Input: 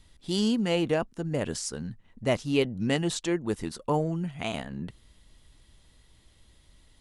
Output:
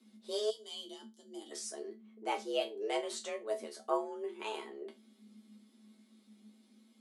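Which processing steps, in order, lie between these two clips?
resonators tuned to a chord D3 major, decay 0.22 s
frequency shifter +210 Hz
gain on a spectral selection 0:00.50–0:01.52, 350–2,900 Hz −20 dB
level +4.5 dB

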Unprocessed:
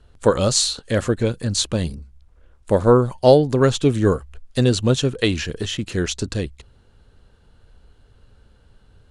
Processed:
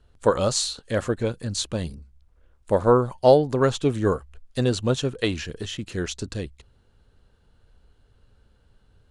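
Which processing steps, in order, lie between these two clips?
dynamic equaliser 900 Hz, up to +6 dB, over −27 dBFS, Q 0.72
level −6.5 dB

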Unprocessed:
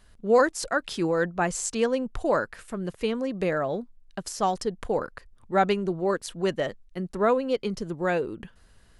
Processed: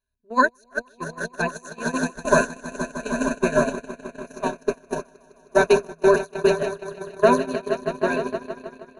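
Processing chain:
EQ curve with evenly spaced ripples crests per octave 1.5, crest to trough 18 dB
echo that builds up and dies away 156 ms, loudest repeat 5, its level −6.5 dB
noise gate −17 dBFS, range −32 dB
level +1.5 dB

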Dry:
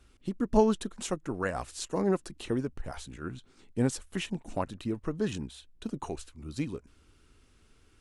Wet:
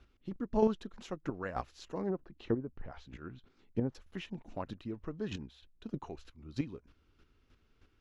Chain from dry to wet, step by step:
0:02.09–0:03.95: treble cut that deepens with the level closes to 880 Hz, closed at −26.5 dBFS
square-wave tremolo 3.2 Hz, depth 60%, duty 15%
moving average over 5 samples

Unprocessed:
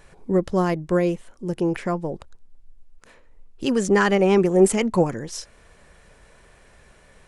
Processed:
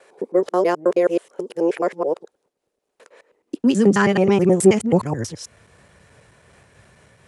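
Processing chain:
reversed piece by piece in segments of 107 ms
high-pass filter sweep 450 Hz → 100 Hz, 0:03.29–0:04.17
amplitude modulation by smooth noise, depth 55%
level +3.5 dB

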